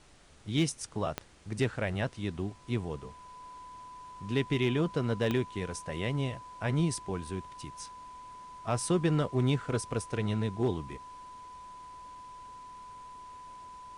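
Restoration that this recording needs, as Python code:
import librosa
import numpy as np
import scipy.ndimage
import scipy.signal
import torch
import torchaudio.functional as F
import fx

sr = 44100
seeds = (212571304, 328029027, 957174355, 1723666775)

y = fx.fix_declip(x, sr, threshold_db=-19.5)
y = fx.fix_declick_ar(y, sr, threshold=10.0)
y = fx.notch(y, sr, hz=1000.0, q=30.0)
y = fx.noise_reduce(y, sr, print_start_s=0.0, print_end_s=0.5, reduce_db=28.0)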